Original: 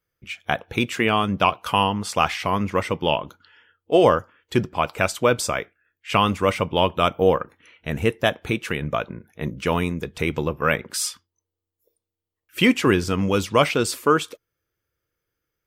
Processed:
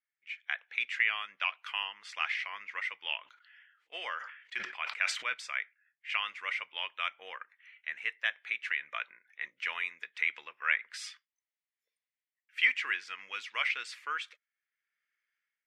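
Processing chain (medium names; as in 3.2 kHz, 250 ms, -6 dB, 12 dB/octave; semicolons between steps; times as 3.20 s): level rider gain up to 11.5 dB; ladder band-pass 2.2 kHz, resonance 60%; 3.23–5.34 s: decay stretcher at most 76 dB/s; trim -1.5 dB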